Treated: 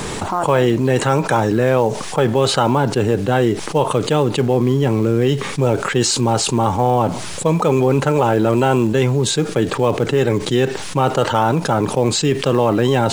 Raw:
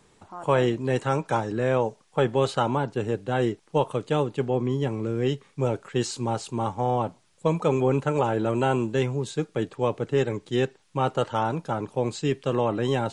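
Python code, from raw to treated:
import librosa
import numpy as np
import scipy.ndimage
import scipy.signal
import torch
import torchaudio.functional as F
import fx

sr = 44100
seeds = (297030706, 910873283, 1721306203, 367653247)

p1 = fx.quant_float(x, sr, bits=2)
p2 = x + (p1 * 10.0 ** (-8.5 / 20.0))
p3 = fx.env_flatten(p2, sr, amount_pct=70)
y = p3 * 10.0 ** (2.5 / 20.0)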